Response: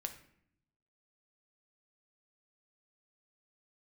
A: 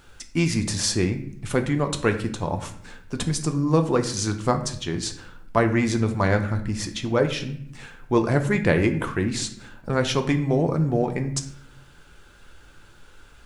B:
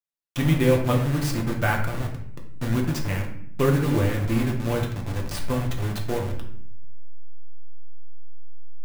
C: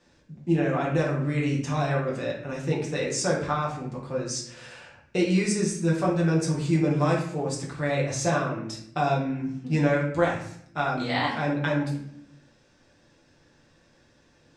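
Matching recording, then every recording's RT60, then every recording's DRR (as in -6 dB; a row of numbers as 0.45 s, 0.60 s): A; 0.65 s, 0.65 s, 0.65 s; 5.5 dB, -0.5 dB, -4.5 dB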